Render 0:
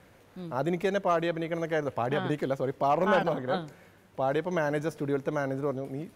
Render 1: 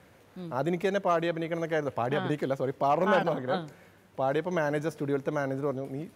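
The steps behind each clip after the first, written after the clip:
high-pass filter 56 Hz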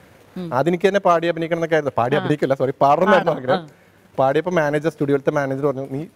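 transient designer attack +5 dB, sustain −6 dB
level +9 dB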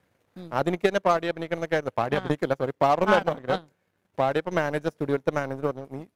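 power curve on the samples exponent 1.4
level −3.5 dB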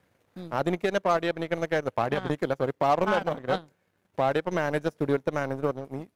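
brickwall limiter −14 dBFS, peak gain reduction 8 dB
level +1 dB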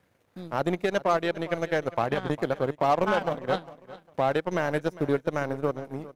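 repeating echo 403 ms, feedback 28%, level −18 dB

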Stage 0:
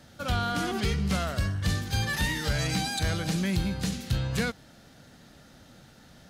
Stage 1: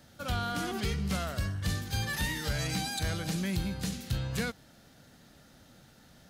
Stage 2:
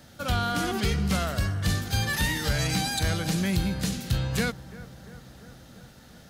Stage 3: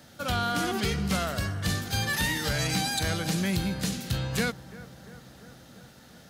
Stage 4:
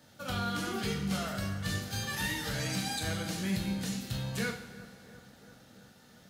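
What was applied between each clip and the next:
high-shelf EQ 12,000 Hz +9 dB; level −4.5 dB
bucket-brigade delay 343 ms, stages 4,096, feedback 69%, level −17.5 dB; level +6 dB
high-pass filter 120 Hz 6 dB per octave
coupled-rooms reverb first 0.59 s, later 2.8 s, from −16 dB, DRR 0 dB; level −9 dB

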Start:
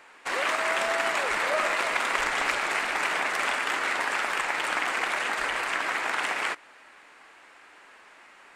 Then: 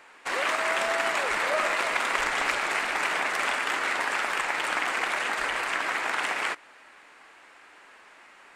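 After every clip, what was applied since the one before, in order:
no processing that can be heard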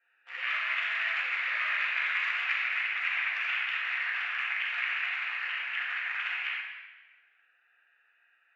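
adaptive Wiener filter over 41 samples
flat-topped band-pass 2,200 Hz, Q 1.7
convolution reverb RT60 1.1 s, pre-delay 3 ms, DRR −10 dB
level −2 dB

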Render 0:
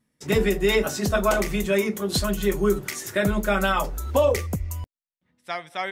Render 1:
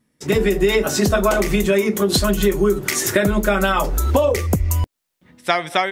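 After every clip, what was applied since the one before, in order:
automatic gain control gain up to 16 dB
parametric band 340 Hz +3.5 dB 0.77 octaves
downward compressor, threshold −19 dBFS, peak gain reduction 13.5 dB
level +5 dB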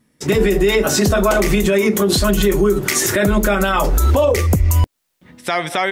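brickwall limiter −12.5 dBFS, peak gain reduction 11 dB
level +6 dB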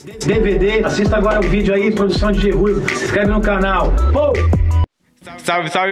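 downward compressor, threshold −16 dBFS, peak gain reduction 6 dB
echo ahead of the sound 216 ms −19 dB
treble cut that deepens with the level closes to 3,000 Hz, closed at −17 dBFS
level +5.5 dB

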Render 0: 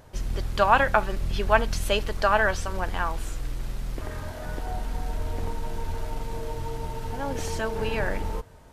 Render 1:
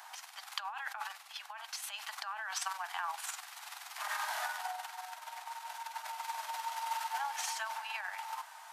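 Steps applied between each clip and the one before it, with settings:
compressor whose output falls as the input rises −33 dBFS, ratio −1
Butterworth high-pass 740 Hz 72 dB per octave
level +1.5 dB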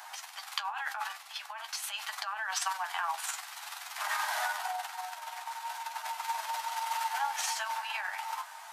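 flanger 0.45 Hz, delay 9.3 ms, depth 5.3 ms, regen +43%
level +8.5 dB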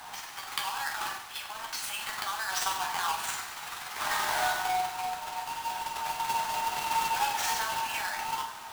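each half-wave held at its own peak
dense smooth reverb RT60 0.72 s, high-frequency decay 0.95×, DRR 1 dB
level −3 dB

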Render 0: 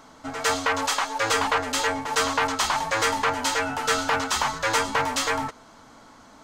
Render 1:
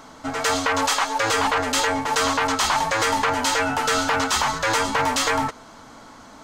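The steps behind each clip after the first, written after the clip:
brickwall limiter −16 dBFS, peak gain reduction 6 dB
level +5.5 dB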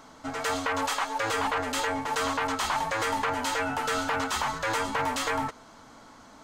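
dynamic equaliser 5,500 Hz, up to −5 dB, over −36 dBFS, Q 1
level −6.5 dB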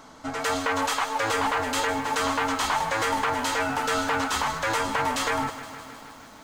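feedback echo at a low word length 156 ms, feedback 80%, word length 8 bits, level −13.5 dB
level +2.5 dB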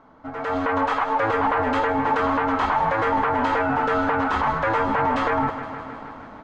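low-pass filter 1,500 Hz 12 dB per octave
brickwall limiter −21 dBFS, peak gain reduction 5.5 dB
automatic gain control gain up to 12 dB
level −3.5 dB

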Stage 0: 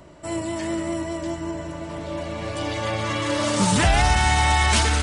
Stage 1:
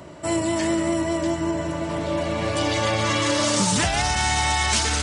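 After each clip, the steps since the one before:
dynamic equaliser 6,000 Hz, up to +7 dB, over −41 dBFS, Q 0.94
downward compressor 6 to 1, threshold −24 dBFS, peak gain reduction 11 dB
high-pass filter 78 Hz
level +6 dB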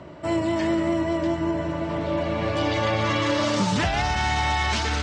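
high-frequency loss of the air 160 metres

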